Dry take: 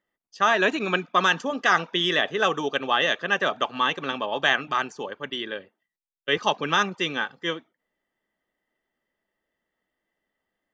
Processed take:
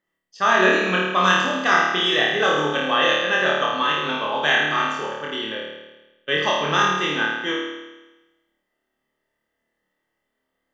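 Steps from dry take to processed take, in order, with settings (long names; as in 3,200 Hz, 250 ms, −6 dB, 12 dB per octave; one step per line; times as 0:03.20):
flutter between parallel walls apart 4.6 metres, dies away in 1.1 s
level −1 dB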